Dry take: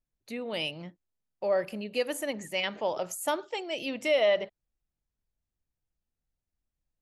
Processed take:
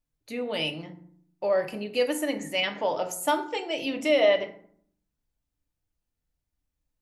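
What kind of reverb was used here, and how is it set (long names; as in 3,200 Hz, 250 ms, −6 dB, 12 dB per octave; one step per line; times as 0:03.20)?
feedback delay network reverb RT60 0.6 s, low-frequency decay 1.5×, high-frequency decay 0.55×, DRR 5 dB
level +2 dB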